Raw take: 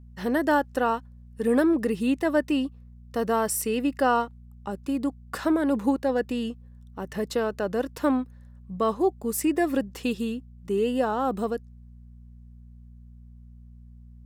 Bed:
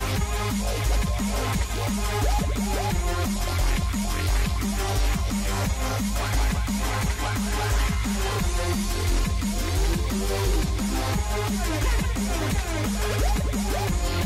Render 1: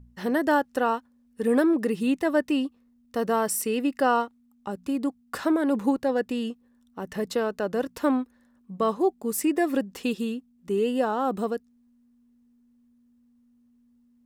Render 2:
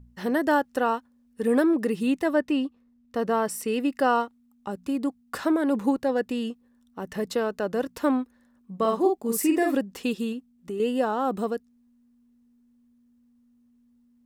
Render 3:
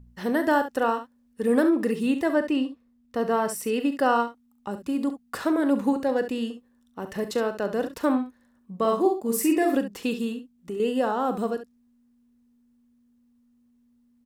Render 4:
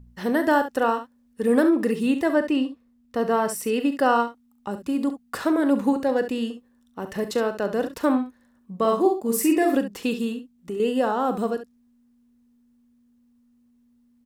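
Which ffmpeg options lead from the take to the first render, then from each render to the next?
-af "bandreject=f=60:t=h:w=4,bandreject=f=120:t=h:w=4,bandreject=f=180:t=h:w=4"
-filter_complex "[0:a]asettb=1/sr,asplit=3[s0][s1][s2];[s0]atrim=end=2.344[s3];[s1]atrim=start=2.34:end=3.68,asetpts=PTS-STARTPTS,afade=t=in:d=0.004:c=qsin,afade=t=out:st=1.336:d=0.004:c=qsin,highshelf=f=6000:g=-9[s4];[s2]atrim=start=3.676[s5];[s3][s4]acrossfade=d=0.004:c1=hsin:c2=qsin[s6];[s6][s5]acrossfade=d=0.004:c1=qsin:c2=hsin,asettb=1/sr,asplit=3[s7][s8][s9];[s7]atrim=end=8.774[s10];[s8]atrim=start=8.77:end=9.75,asetpts=PTS-STARTPTS,afade=t=in:d=0.004:c=qsin,afade=t=out:st=0.976:d=0.004:c=qsin,asplit=2[s11][s12];[s12]adelay=48,volume=0.668[s13];[s11][s13]amix=inputs=2:normalize=0,atrim=end_sample=43218[s14];[s9]atrim=start=9.746[s15];[s10][s14]acrossfade=d=0.004:c1=hsin:c2=qsin[s16];[s16][s15]acrossfade=d=0.004:c1=qsin:c2=hsin,asettb=1/sr,asplit=3[s17][s18][s19];[s17]atrim=end=10.324[s20];[s18]atrim=start=10.32:end=10.8,asetpts=PTS-STARTPTS,afade=t=in:d=0.004:c=qsin,afade=t=out:st=0.476:d=0.004:c=qsin,acompressor=threshold=0.0355:ratio=4:attack=3.2:release=140:knee=1:detection=peak[s21];[s19]atrim=start=10.796[s22];[s20][s21]acrossfade=d=0.004:c1=hsin:c2=qsin[s23];[s23][s22]acrossfade=d=0.004:c1=qsin:c2=hsin"
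-af "aecho=1:1:39|68:0.224|0.282"
-af "volume=1.26"

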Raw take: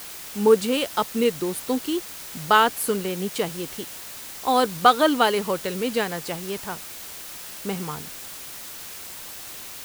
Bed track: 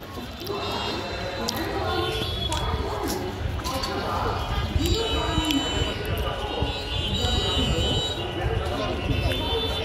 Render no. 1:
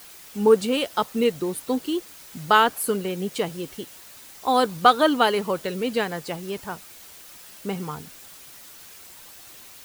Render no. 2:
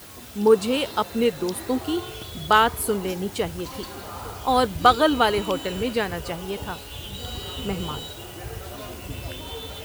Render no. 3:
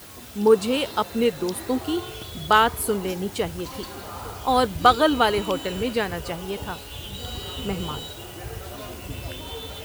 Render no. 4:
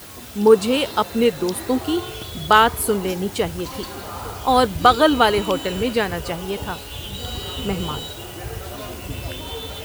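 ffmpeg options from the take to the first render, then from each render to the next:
-af "afftdn=nr=8:nf=-38"
-filter_complex "[1:a]volume=0.316[s0];[0:a][s0]amix=inputs=2:normalize=0"
-af anull
-af "volume=1.58,alimiter=limit=0.891:level=0:latency=1"

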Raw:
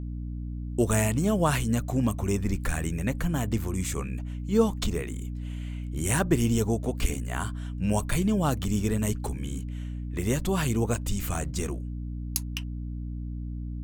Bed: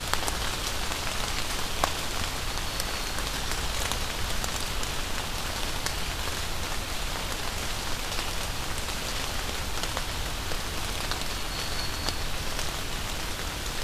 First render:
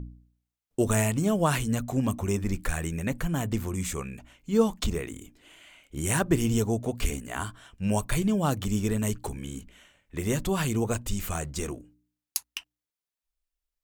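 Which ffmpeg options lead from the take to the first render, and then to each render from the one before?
-af "bandreject=f=60:t=h:w=4,bandreject=f=120:t=h:w=4,bandreject=f=180:t=h:w=4,bandreject=f=240:t=h:w=4,bandreject=f=300:t=h:w=4"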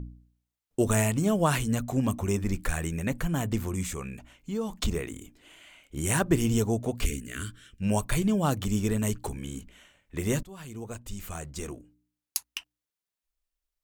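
-filter_complex "[0:a]asettb=1/sr,asplit=3[s0][s1][s2];[s0]atrim=end=3.834[s3];[s1]atrim=start=3.83:end=4.75,asetpts=PTS-STARTPTS,afade=t=in:d=0.004:c=qsin,afade=t=out:st=0.916:d=0.004:c=qsin,acompressor=threshold=0.0282:ratio=2.5:attack=3.2:release=140:knee=1:detection=peak[s4];[s2]atrim=start=4.746[s5];[s3][s4]acrossfade=d=0.004:c1=hsin:c2=qsin[s6];[s6][s5]acrossfade=d=0.004:c1=qsin:c2=hsin,asettb=1/sr,asplit=3[s7][s8][s9];[s7]atrim=end=7.064[s10];[s8]atrim=start=7.06:end=7.82,asetpts=PTS-STARTPTS,afade=t=in:d=0.004:c=qsin,afade=t=out:st=0.756:d=0.004:c=qsin,asuperstop=centerf=830:order=4:qfactor=0.73[s11];[s9]atrim=start=7.816[s12];[s10][s11]acrossfade=d=0.004:c1=hsin:c2=qsin[s13];[s13][s12]acrossfade=d=0.004:c1=qsin:c2=hsin,asplit=2[s14][s15];[s14]atrim=end=10.43,asetpts=PTS-STARTPTS,afade=t=out:st=10.426:d=0.004:c=hsin:silence=0.0794328[s16];[s15]atrim=start=10.43,asetpts=PTS-STARTPTS,afade=t=in:d=2.06:silence=0.0794328[s17];[s16][s17]concat=n=2:v=0:a=1"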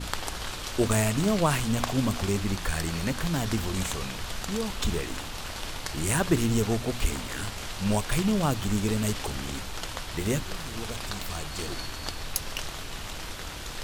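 -filter_complex "[1:a]volume=0.562[s0];[0:a][s0]amix=inputs=2:normalize=0"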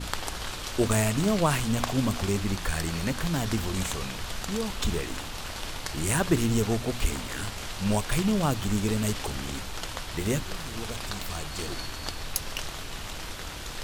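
-af anull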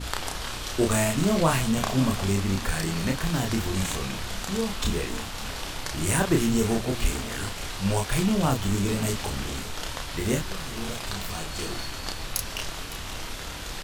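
-filter_complex "[0:a]asplit=2[s0][s1];[s1]adelay=31,volume=0.708[s2];[s0][s2]amix=inputs=2:normalize=0,aecho=1:1:558:0.158"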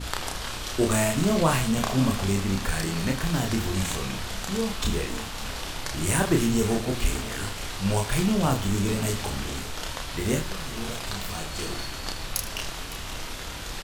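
-af "aecho=1:1:77:0.211"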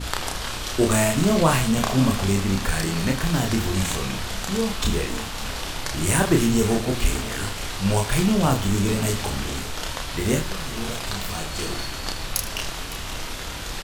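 -af "volume=1.5"

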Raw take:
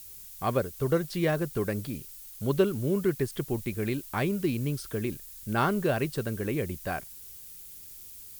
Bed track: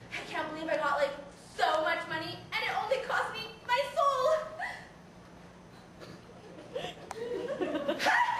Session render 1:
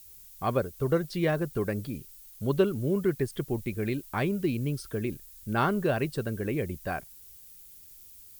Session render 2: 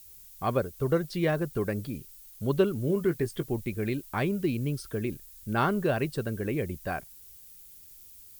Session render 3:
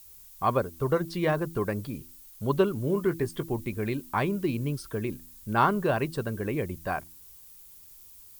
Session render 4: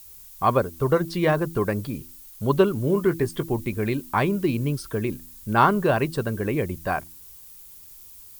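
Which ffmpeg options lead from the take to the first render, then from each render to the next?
-af "afftdn=nr=6:nf=-46"
-filter_complex "[0:a]asettb=1/sr,asplit=3[s0][s1][s2];[s0]atrim=end=2.864[s3];[s1]atrim=start=2.86:end=3.48,asetpts=PTS-STARTPTS,afade=t=in:d=0.004:c=qsin,afade=t=out:st=0.616:d=0.004:c=qsin,asplit=2[s4][s5];[s5]adelay=18,volume=0.316[s6];[s4][s6]amix=inputs=2:normalize=0,atrim=end_sample=27342[s7];[s2]atrim=start=3.476[s8];[s3][s7]acrossfade=d=0.004:c1=hsin:c2=qsin[s9];[s9][s8]acrossfade=d=0.004:c1=qsin:c2=hsin"
-af "equalizer=f=1000:w=2.3:g=8.5,bandreject=f=82.8:t=h:w=4,bandreject=f=165.6:t=h:w=4,bandreject=f=248.4:t=h:w=4,bandreject=f=331.2:t=h:w=4"
-af "volume=1.78"

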